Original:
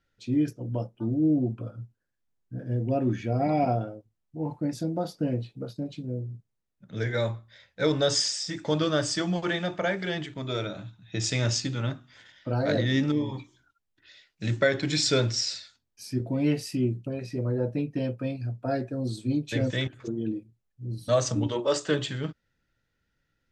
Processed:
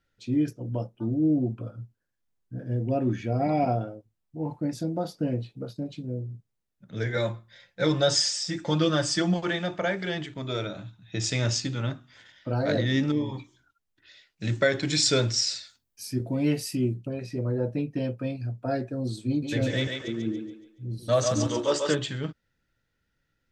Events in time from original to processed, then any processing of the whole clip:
7.16–9.34 comb 5.7 ms, depth 63%
14.55–16.94 high shelf 8900 Hz +11.5 dB
19.28–21.95 thinning echo 0.141 s, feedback 45%, high-pass 400 Hz, level -3 dB

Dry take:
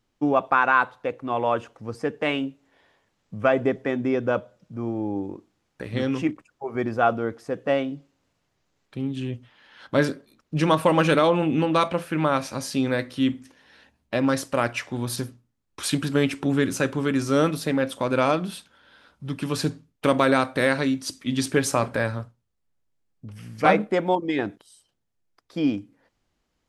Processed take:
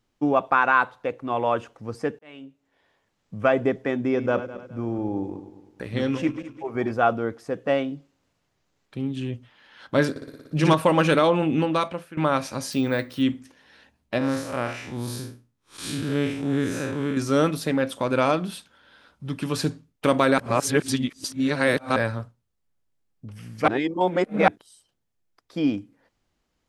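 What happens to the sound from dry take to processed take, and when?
2.19–3.4 fade in
4.06–6.93 regenerating reverse delay 0.103 s, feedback 56%, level -11 dB
10.1–10.74 flutter echo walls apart 10.1 m, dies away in 1.4 s
11.6–12.17 fade out, to -16.5 dB
12.72–13.22 careless resampling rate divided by 2×, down none, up hold
14.18–17.17 time blur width 0.147 s
20.38–21.96 reverse
23.68–24.48 reverse

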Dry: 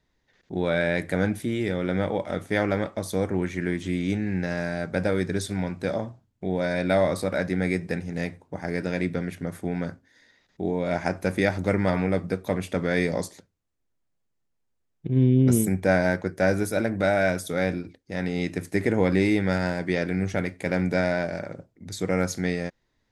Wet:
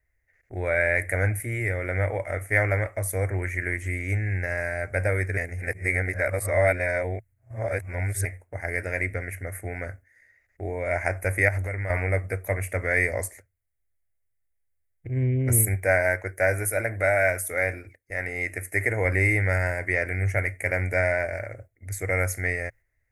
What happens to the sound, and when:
5.37–8.25 reverse
11.48–11.9 compressor, threshold -26 dBFS
15.74–19.05 low shelf 150 Hz -8 dB
whole clip: dynamic EQ 970 Hz, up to +6 dB, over -47 dBFS, Q 4.8; gate -46 dBFS, range -6 dB; EQ curve 110 Hz 0 dB, 160 Hz -26 dB, 660 Hz -6 dB, 960 Hz -18 dB, 2100 Hz +3 dB, 3500 Hz -29 dB, 10000 Hz +3 dB; gain +7.5 dB

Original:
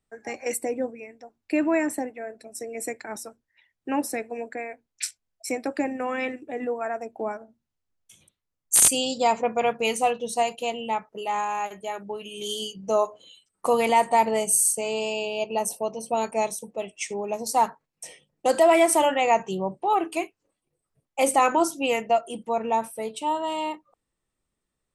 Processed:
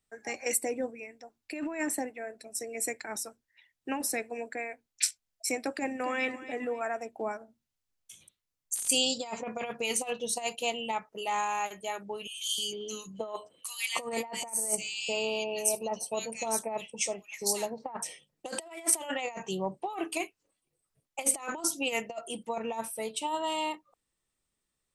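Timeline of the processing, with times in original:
5.75–6.28 echo throw 0.27 s, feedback 35%, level -14.5 dB
12.27–18.04 bands offset in time highs, lows 0.31 s, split 2000 Hz
whole clip: high shelf 6700 Hz -2.5 dB; negative-ratio compressor -25 dBFS, ratio -0.5; high shelf 2100 Hz +10 dB; gain -8 dB

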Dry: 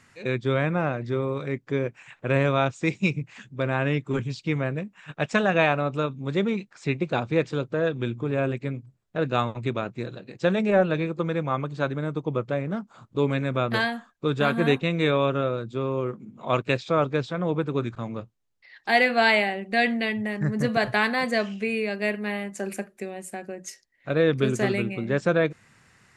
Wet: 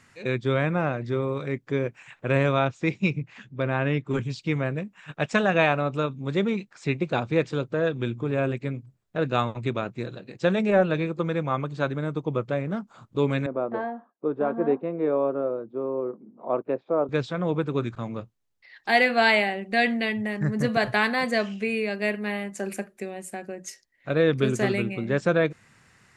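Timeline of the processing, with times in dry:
2.59–4.1 air absorption 100 m
13.46–17.09 Butterworth band-pass 490 Hz, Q 0.74

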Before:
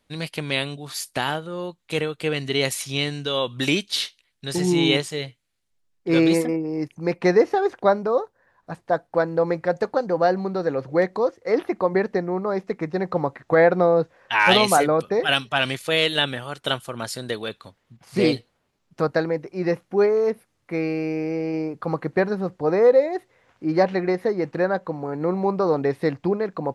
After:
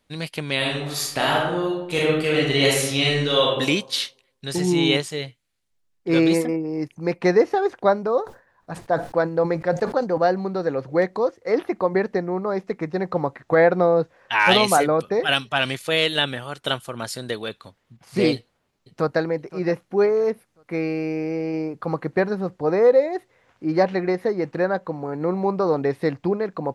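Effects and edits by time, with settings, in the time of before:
0.57–3.49 reverb throw, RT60 0.88 s, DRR -4.5 dB
8.17–10.18 sustainer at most 150 dB/s
18.34–19.21 echo throw 0.52 s, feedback 35%, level -17 dB

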